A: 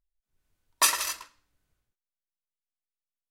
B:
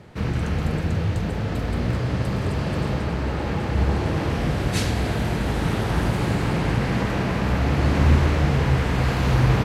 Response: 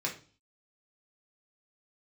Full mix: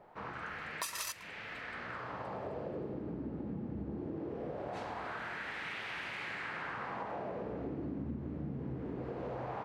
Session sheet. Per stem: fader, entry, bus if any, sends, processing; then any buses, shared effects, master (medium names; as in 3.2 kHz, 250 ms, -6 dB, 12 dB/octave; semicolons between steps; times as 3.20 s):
+2.0 dB, 0.00 s, no send, square tremolo 2.1 Hz, depth 65%, duty 35%
-2.5 dB, 0.00 s, no send, wah-wah 0.21 Hz 240–2300 Hz, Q 2.1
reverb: none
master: compression 6:1, threshold -37 dBFS, peak gain reduction 13.5 dB